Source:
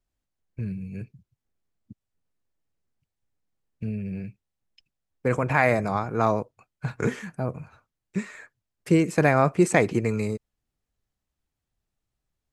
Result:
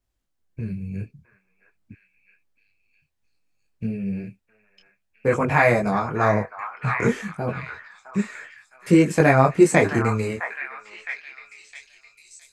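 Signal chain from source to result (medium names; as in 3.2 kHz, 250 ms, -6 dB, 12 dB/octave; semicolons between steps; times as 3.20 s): repeats whose band climbs or falls 662 ms, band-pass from 1.3 kHz, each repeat 0.7 oct, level -4.5 dB; detune thickener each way 19 cents; trim +7 dB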